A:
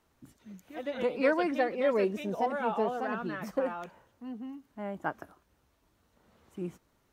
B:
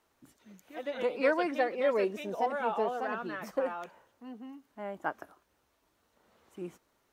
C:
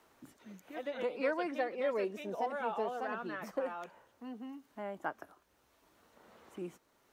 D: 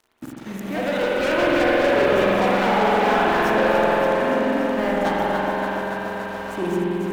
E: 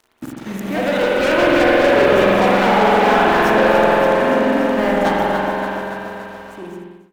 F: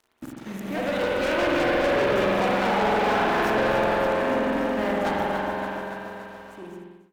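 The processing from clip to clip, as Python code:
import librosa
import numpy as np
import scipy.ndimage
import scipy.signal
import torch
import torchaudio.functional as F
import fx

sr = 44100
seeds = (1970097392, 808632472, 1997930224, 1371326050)

y1 = fx.bass_treble(x, sr, bass_db=-10, treble_db=0)
y2 = fx.band_squash(y1, sr, depth_pct=40)
y2 = y2 * 10.0 ** (-4.5 / 20.0)
y3 = fx.echo_alternate(y2, sr, ms=143, hz=940.0, feedback_pct=85, wet_db=-6.0)
y3 = fx.leveller(y3, sr, passes=5)
y3 = fx.rev_spring(y3, sr, rt60_s=3.8, pass_ms=(46,), chirp_ms=55, drr_db=-5.0)
y4 = fx.fade_out_tail(y3, sr, length_s=2.04)
y4 = y4 * 10.0 ** (5.0 / 20.0)
y5 = fx.tube_stage(y4, sr, drive_db=10.0, bias=0.5)
y5 = y5 * 10.0 ** (-5.5 / 20.0)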